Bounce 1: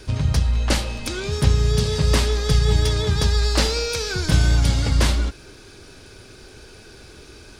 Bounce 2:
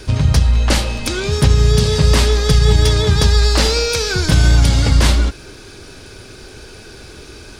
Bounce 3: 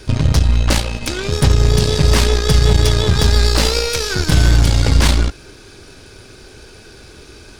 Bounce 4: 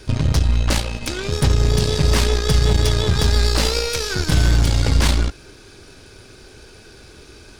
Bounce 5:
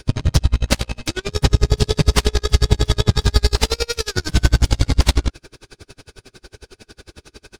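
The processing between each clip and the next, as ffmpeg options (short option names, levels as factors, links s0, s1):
-af "alimiter=level_in=2.51:limit=0.891:release=50:level=0:latency=1,volume=0.891"
-af "aeval=exprs='0.794*(cos(1*acos(clip(val(0)/0.794,-1,1)))-cos(1*PI/2))+0.0891*(cos(6*acos(clip(val(0)/0.794,-1,1)))-cos(6*PI/2))+0.0251*(cos(7*acos(clip(val(0)/0.794,-1,1)))-cos(7*PI/2))':c=same,volume=0.891"
-af "apsyclip=1.78,volume=0.376"
-af "aeval=exprs='val(0)*pow(10,-36*(0.5-0.5*cos(2*PI*11*n/s))/20)':c=same,volume=2.11"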